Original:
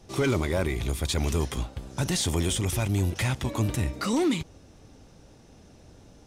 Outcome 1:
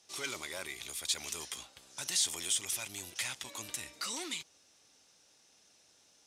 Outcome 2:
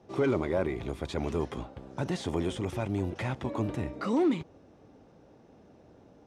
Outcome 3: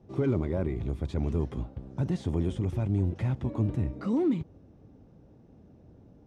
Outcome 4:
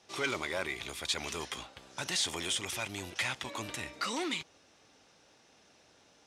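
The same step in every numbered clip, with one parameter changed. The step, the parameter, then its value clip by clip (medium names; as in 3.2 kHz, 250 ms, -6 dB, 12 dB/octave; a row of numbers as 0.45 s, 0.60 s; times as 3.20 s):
band-pass filter, frequency: 7.3 kHz, 500 Hz, 180 Hz, 2.7 kHz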